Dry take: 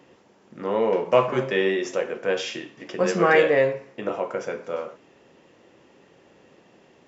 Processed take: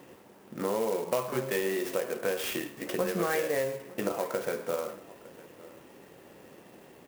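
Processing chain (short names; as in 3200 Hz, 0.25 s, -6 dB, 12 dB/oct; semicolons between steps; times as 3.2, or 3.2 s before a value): compressor 5:1, threshold -30 dBFS, peak gain reduction 16 dB; on a send: echo 0.907 s -20.5 dB; on the sum: clock jitter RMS 0.046 ms; gain +2.5 dB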